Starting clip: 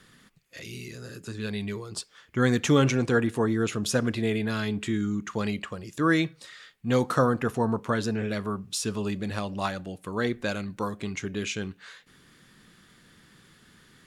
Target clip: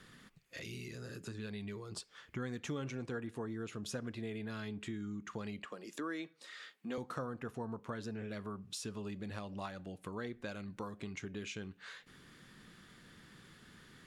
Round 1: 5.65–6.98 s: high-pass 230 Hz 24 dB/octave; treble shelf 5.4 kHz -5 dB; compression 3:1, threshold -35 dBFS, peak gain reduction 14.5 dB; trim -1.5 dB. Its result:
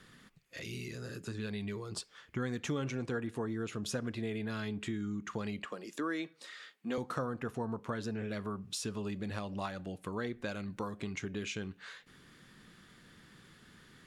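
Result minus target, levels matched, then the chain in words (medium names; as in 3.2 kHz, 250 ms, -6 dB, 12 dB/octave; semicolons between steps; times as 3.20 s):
compression: peak gain reduction -4.5 dB
5.65–6.98 s: high-pass 230 Hz 24 dB/octave; treble shelf 5.4 kHz -5 dB; compression 3:1, threshold -42 dBFS, peak gain reduction 19 dB; trim -1.5 dB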